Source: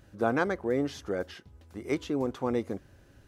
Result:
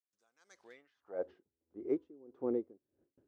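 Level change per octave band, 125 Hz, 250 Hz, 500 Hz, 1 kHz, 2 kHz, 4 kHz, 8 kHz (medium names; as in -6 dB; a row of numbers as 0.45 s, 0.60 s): -22.5 dB, -10.5 dB, -9.0 dB, -21.0 dB, -25.5 dB, under -25 dB, under -20 dB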